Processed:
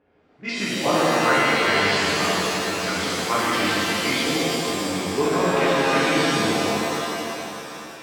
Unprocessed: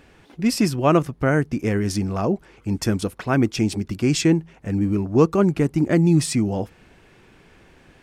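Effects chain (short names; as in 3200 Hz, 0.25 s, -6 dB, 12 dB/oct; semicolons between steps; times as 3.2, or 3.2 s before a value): repeated pitch sweeps -2.5 st, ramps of 0.427 s; low-pass opened by the level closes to 470 Hz, open at -15 dBFS; weighting filter ITU-R 468; treble ducked by the level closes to 720 Hz, closed at -19 dBFS; on a send: echo with dull and thin repeats by turns 0.15 s, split 1400 Hz, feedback 81%, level -10 dB; on the sum: shimmer reverb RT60 2.5 s, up +7 st, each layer -2 dB, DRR -8.5 dB; gain -2.5 dB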